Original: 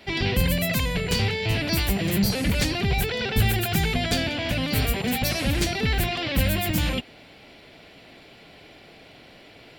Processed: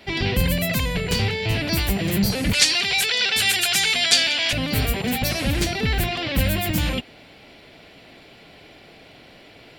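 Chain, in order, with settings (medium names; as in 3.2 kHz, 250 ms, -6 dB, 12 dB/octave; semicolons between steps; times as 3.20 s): 2.53–4.53 s: frequency weighting ITU-R 468; trim +1.5 dB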